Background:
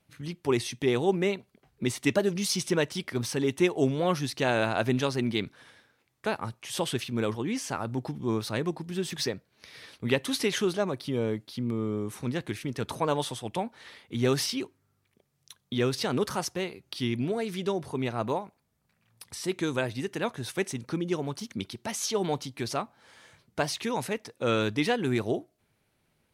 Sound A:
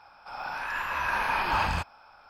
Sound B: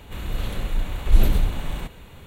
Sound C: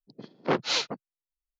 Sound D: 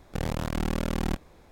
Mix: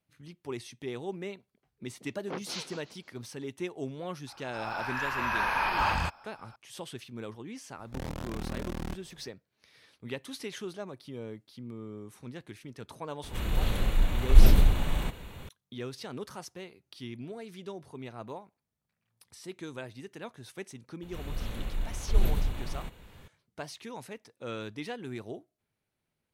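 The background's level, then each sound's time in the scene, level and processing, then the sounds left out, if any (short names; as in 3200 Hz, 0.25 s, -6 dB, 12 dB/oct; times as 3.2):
background -12 dB
1.82 add C -13 dB + warbling echo 0.171 s, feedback 41%, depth 161 cents, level -13 dB
4.27 add A -1 dB
7.79 add D -7 dB + one diode to ground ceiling -35.5 dBFS
13.23 add B -0.5 dB
21.02 add B -8.5 dB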